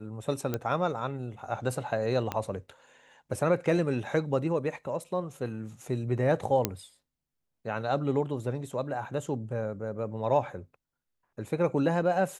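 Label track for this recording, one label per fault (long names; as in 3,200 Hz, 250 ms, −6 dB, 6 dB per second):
0.540000	0.540000	click −16 dBFS
2.320000	2.320000	click −16 dBFS
6.650000	6.650000	click −9 dBFS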